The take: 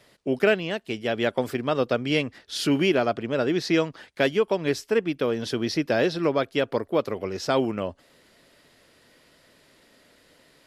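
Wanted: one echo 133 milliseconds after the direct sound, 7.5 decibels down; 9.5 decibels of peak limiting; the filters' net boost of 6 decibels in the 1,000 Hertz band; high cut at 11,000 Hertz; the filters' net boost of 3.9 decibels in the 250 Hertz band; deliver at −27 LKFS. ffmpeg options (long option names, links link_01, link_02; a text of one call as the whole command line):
ffmpeg -i in.wav -af "lowpass=11000,equalizer=frequency=250:width_type=o:gain=4.5,equalizer=frequency=1000:width_type=o:gain=8,alimiter=limit=-13.5dB:level=0:latency=1,aecho=1:1:133:0.422,volume=-2dB" out.wav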